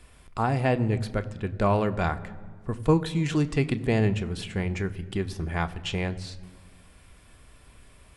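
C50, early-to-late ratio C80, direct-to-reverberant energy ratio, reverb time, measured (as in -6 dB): 17.0 dB, 18.0 dB, 9.5 dB, 1.7 s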